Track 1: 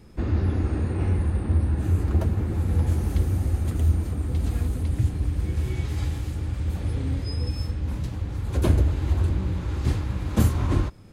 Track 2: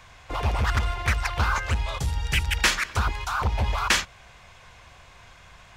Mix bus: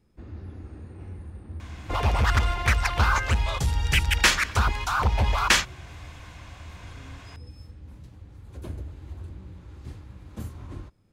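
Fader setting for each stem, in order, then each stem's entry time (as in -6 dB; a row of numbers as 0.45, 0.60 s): -16.5, +2.0 dB; 0.00, 1.60 s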